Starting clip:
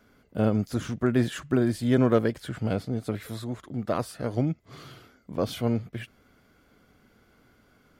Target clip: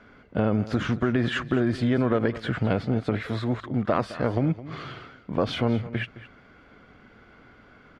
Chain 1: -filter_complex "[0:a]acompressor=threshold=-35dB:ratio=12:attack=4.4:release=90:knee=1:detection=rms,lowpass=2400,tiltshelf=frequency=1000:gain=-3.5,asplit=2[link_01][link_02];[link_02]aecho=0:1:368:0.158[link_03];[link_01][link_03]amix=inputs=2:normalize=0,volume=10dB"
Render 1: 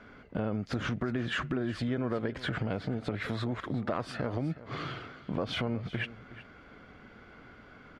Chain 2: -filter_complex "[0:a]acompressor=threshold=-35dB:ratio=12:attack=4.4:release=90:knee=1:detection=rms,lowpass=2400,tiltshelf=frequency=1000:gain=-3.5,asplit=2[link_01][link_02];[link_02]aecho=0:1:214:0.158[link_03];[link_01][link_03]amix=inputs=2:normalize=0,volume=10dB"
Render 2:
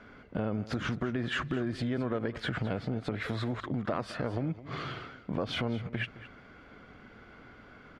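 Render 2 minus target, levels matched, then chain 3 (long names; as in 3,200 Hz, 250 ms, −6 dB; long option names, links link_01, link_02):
downward compressor: peak gain reduction +9 dB
-filter_complex "[0:a]acompressor=threshold=-25dB:ratio=12:attack=4.4:release=90:knee=1:detection=rms,lowpass=2400,tiltshelf=frequency=1000:gain=-3.5,asplit=2[link_01][link_02];[link_02]aecho=0:1:214:0.158[link_03];[link_01][link_03]amix=inputs=2:normalize=0,volume=10dB"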